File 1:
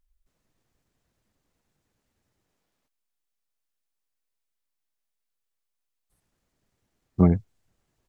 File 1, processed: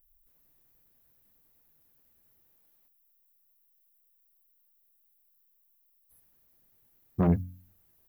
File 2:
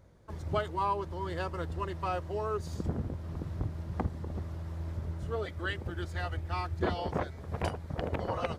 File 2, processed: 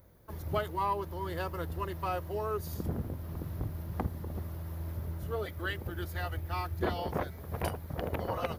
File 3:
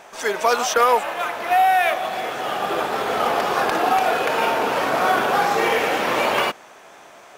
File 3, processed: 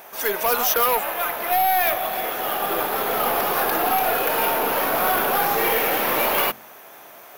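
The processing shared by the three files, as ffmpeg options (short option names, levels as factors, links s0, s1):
-af "aeval=exprs='0.531*(cos(1*acos(clip(val(0)/0.531,-1,1)))-cos(1*PI/2))+0.119*(cos(5*acos(clip(val(0)/0.531,-1,1)))-cos(5*PI/2))+0.0211*(cos(8*acos(clip(val(0)/0.531,-1,1)))-cos(8*PI/2))':c=same,aexciter=amount=14.1:drive=3.8:freq=11000,bandreject=f=45.19:t=h:w=4,bandreject=f=90.38:t=h:w=4,bandreject=f=135.57:t=h:w=4,bandreject=f=180.76:t=h:w=4,bandreject=f=225.95:t=h:w=4,bandreject=f=271.14:t=h:w=4,volume=0.447"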